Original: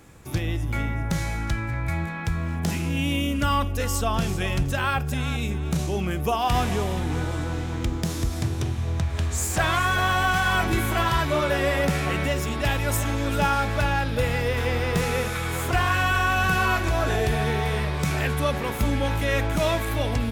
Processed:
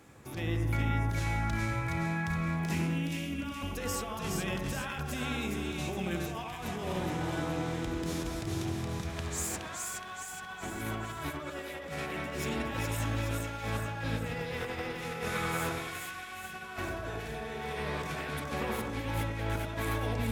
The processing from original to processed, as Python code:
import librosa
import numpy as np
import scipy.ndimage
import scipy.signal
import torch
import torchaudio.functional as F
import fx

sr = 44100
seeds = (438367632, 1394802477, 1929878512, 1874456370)

y = fx.highpass(x, sr, hz=140.0, slope=6)
y = fx.high_shelf(y, sr, hz=4800.0, db=-3.5)
y = fx.over_compress(y, sr, threshold_db=-29.0, ratio=-0.5)
y = fx.echo_split(y, sr, split_hz=1900.0, low_ms=91, high_ms=419, feedback_pct=52, wet_db=-3)
y = y * 10.0 ** (-7.5 / 20.0)